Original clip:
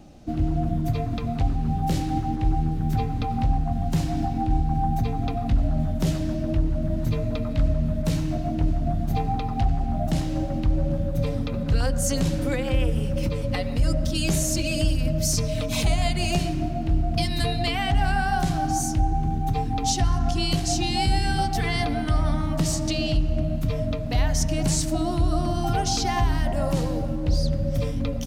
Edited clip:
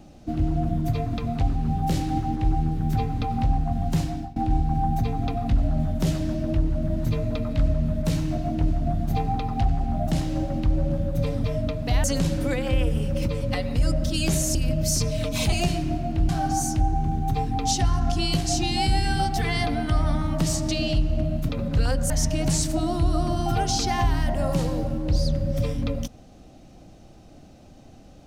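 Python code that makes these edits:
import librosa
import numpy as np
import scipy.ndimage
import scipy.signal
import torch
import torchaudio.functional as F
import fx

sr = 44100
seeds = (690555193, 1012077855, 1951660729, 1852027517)

y = fx.edit(x, sr, fx.fade_out_to(start_s=3.99, length_s=0.37, floor_db=-21.0),
    fx.swap(start_s=11.44, length_s=0.61, other_s=23.68, other_length_s=0.6),
    fx.cut(start_s=14.56, length_s=0.36),
    fx.cut(start_s=15.89, length_s=0.34),
    fx.cut(start_s=17.0, length_s=1.48), tone=tone)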